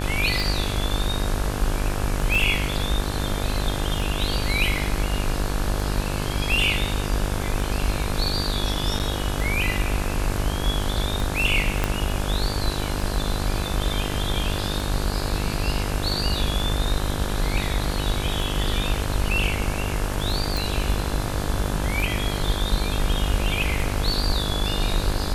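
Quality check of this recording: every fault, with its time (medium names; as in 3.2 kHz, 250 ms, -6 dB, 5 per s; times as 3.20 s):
buzz 50 Hz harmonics 35 -28 dBFS
tick 33 1/3 rpm
2.35 s: dropout 3 ms
8.99–9.00 s: dropout 8.8 ms
11.84 s: pop -7 dBFS
20.57 s: pop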